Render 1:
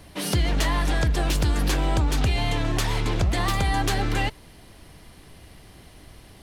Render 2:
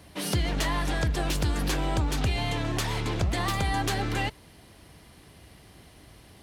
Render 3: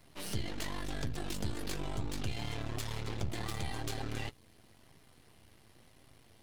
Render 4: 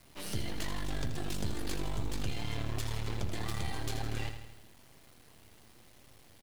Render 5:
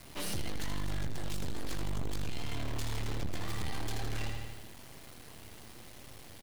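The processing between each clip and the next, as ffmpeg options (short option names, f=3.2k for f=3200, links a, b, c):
-af "highpass=52,volume=-3dB"
-filter_complex "[0:a]acrossover=split=520|2500[a][b][c];[b]alimiter=level_in=6.5dB:limit=-24dB:level=0:latency=1:release=422,volume=-6.5dB[d];[a][d][c]amix=inputs=3:normalize=0,aeval=exprs='max(val(0),0)':c=same,flanger=delay=7.5:depth=1.7:regen=-40:speed=1:shape=sinusoidal,volume=-2dB"
-af "acrusher=bits=9:mix=0:aa=0.000001,aecho=1:1:81|162|243|324|405|486|567:0.355|0.206|0.119|0.0692|0.0402|0.0233|0.0135"
-af "asoftclip=type=tanh:threshold=-36dB,volume=8dB"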